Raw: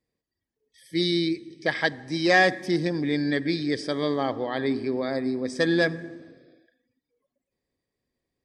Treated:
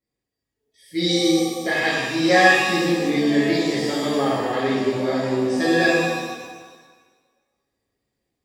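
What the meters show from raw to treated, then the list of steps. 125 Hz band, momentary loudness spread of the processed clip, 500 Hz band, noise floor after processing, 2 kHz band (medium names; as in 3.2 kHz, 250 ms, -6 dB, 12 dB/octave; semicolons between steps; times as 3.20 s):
+3.0 dB, 10 LU, +5.5 dB, -83 dBFS, +6.0 dB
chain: level rider gain up to 4 dB; pitch-shifted reverb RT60 1.3 s, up +7 st, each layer -8 dB, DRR -8 dB; trim -8 dB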